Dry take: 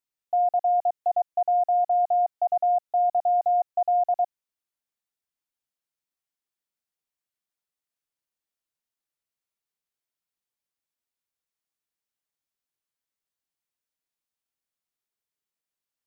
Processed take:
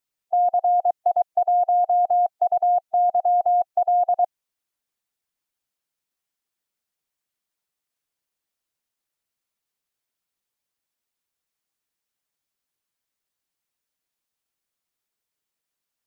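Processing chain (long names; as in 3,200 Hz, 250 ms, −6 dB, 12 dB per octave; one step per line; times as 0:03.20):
harmonic and percussive parts rebalanced harmonic −4 dB
level +7 dB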